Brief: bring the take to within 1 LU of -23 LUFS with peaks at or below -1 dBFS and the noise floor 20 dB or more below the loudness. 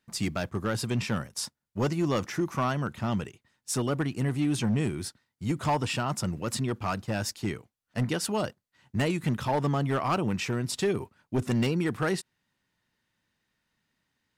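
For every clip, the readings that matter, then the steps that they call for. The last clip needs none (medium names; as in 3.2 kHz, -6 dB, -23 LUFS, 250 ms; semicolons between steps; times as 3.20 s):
clipped samples 1.0%; clipping level -20.5 dBFS; loudness -30.0 LUFS; peak level -20.5 dBFS; loudness target -23.0 LUFS
-> clip repair -20.5 dBFS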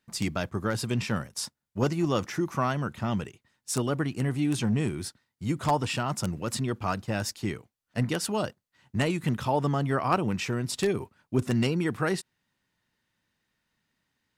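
clipped samples 0.0%; loudness -29.5 LUFS; peak level -11.5 dBFS; loudness target -23.0 LUFS
-> trim +6.5 dB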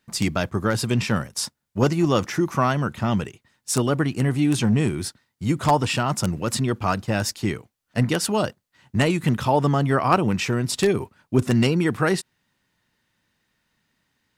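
loudness -23.0 LUFS; peak level -5.0 dBFS; noise floor -74 dBFS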